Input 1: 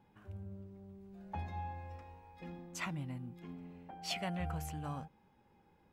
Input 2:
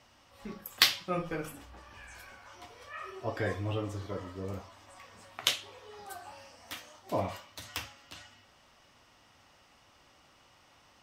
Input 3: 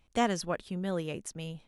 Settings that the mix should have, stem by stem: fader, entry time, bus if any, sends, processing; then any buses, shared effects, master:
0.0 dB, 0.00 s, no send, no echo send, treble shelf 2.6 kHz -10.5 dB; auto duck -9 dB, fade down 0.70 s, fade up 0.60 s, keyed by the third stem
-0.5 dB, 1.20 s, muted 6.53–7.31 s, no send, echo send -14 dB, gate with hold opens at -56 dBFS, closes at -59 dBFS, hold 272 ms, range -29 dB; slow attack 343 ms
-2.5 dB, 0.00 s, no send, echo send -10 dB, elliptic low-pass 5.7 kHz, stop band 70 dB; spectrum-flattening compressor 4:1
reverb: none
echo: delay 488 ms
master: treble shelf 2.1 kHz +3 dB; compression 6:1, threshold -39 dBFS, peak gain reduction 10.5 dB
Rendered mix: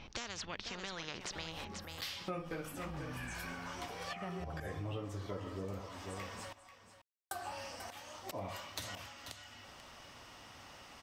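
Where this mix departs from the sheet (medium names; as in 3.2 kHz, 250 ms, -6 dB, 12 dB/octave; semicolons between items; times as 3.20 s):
stem 2 -0.5 dB -> +7.5 dB; master: missing treble shelf 2.1 kHz +3 dB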